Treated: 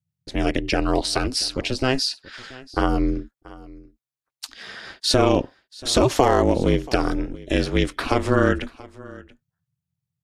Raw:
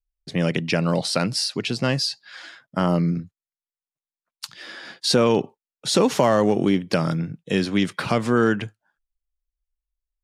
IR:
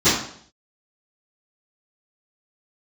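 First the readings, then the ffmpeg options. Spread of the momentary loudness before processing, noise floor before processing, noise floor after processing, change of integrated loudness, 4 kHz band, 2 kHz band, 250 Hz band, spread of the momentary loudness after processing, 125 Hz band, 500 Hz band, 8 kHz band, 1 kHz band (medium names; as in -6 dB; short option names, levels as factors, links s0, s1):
18 LU, under -85 dBFS, under -85 dBFS, 0.0 dB, +0.5 dB, +0.5 dB, -1.0 dB, 19 LU, -1.0 dB, +0.5 dB, +0.5 dB, +2.5 dB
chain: -af "aeval=exprs='val(0)*sin(2*PI*130*n/s)':c=same,aecho=1:1:682:0.0891,volume=1.5"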